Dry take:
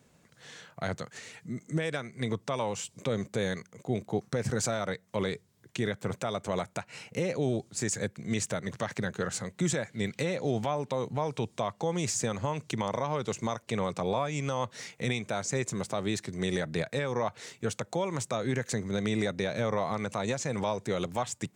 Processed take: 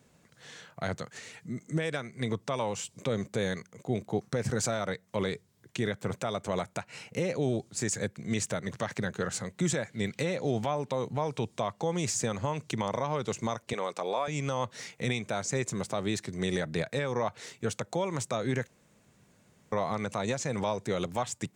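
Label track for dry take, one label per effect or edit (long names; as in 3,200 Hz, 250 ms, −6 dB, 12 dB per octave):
13.730000	14.280000	high-pass filter 390 Hz
18.670000	19.720000	fill with room tone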